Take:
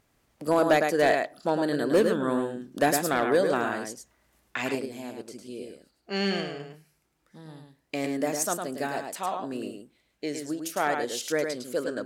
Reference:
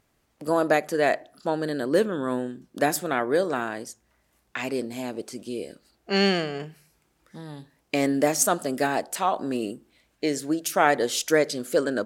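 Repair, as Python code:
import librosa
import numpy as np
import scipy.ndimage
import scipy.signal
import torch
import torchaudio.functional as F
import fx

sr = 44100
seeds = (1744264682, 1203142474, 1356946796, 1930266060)

y = fx.fix_declip(x, sr, threshold_db=-14.0)
y = fx.fix_echo_inverse(y, sr, delay_ms=106, level_db=-5.5)
y = fx.fix_level(y, sr, at_s=4.75, step_db=7.0)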